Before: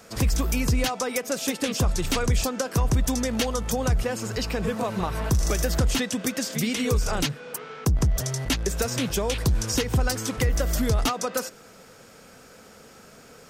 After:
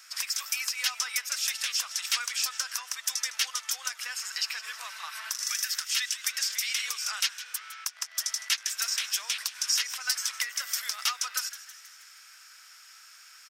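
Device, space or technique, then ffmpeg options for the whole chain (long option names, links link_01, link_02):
headphones lying on a table: -filter_complex "[0:a]highpass=frequency=1400:width=0.5412,highpass=frequency=1400:width=1.3066,equalizer=frequency=5300:width_type=o:width=0.2:gain=7.5,asettb=1/sr,asplit=3[link_01][link_02][link_03];[link_01]atrim=end=5.444[link_04];[link_02]atrim=start=5.44:end=6.24,asetpts=PTS-STARTPTS,afade=type=in:duration=0.004:curve=qsin,afade=type=out:start_time=0.796:duration=0.004:curve=qsin,highpass=1300[link_05];[link_03]atrim=start=6.236[link_06];[link_04][link_05]acrossfade=duration=0.004:curve1=hsin:curve2=qsin[link_07];[link_07][link_06]acrossfade=duration=0.004:curve1=qsin:curve2=hsin,asplit=7[link_08][link_09][link_10][link_11][link_12][link_13][link_14];[link_09]adelay=159,afreqshift=140,volume=-14.5dB[link_15];[link_10]adelay=318,afreqshift=280,volume=-19.4dB[link_16];[link_11]adelay=477,afreqshift=420,volume=-24.3dB[link_17];[link_12]adelay=636,afreqshift=560,volume=-29.1dB[link_18];[link_13]adelay=795,afreqshift=700,volume=-34dB[link_19];[link_14]adelay=954,afreqshift=840,volume=-38.9dB[link_20];[link_08][link_15][link_16][link_17][link_18][link_19][link_20]amix=inputs=7:normalize=0"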